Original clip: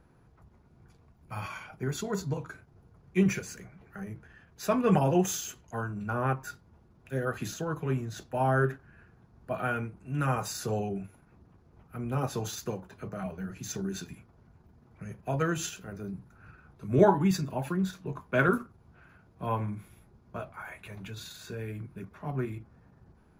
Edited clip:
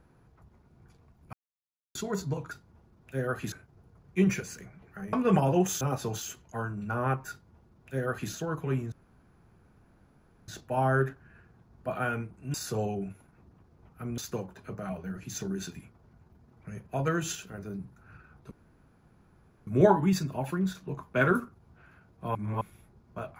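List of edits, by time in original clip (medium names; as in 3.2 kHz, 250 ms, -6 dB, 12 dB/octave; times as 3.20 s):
1.33–1.95 s: mute
4.12–4.72 s: delete
6.49–7.50 s: copy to 2.51 s
8.11 s: insert room tone 1.56 s
10.17–10.48 s: delete
12.12–12.52 s: move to 5.40 s
16.85 s: insert room tone 1.16 s
19.53–19.79 s: reverse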